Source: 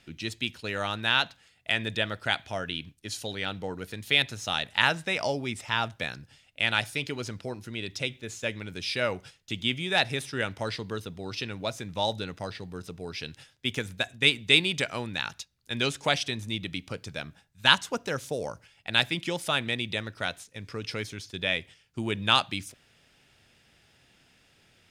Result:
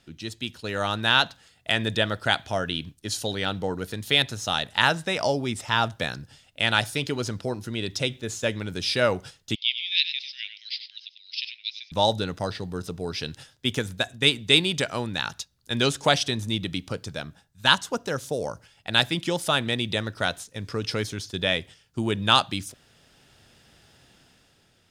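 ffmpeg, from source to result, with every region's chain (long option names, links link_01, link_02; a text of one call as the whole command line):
ffmpeg -i in.wav -filter_complex "[0:a]asettb=1/sr,asplit=3[link_01][link_02][link_03];[link_01]atrim=end=9.554[link_04];[link_02]atrim=start=9.55:end=11.92,asetpts=PTS-STARTPTS,afade=type=in:duration=0.004:curve=qsin,afade=type=out:start_time=2.366:duration=0.004:curve=qsin,asuperpass=centerf=3400:order=12:qfactor=1.1,aecho=1:1:96:0.316,atrim=end_sample=104517[link_05];[link_03]atrim=start=11.916[link_06];[link_04][link_05]acrossfade=duration=0.004:curve1=hsin:curve2=qsin[link_07];[link_07][link_06]acrossfade=duration=0.004:curve1=qsin:curve2=hsin,equalizer=frequency=2300:width_type=o:width=0.66:gain=-7,dynaudnorm=framelen=130:gausssize=11:maxgain=7dB" out.wav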